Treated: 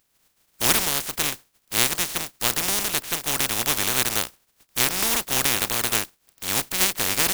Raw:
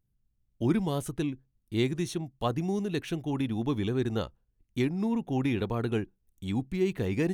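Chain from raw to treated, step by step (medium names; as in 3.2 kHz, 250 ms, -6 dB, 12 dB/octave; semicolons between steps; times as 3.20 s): spectral contrast reduction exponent 0.14; trim +6 dB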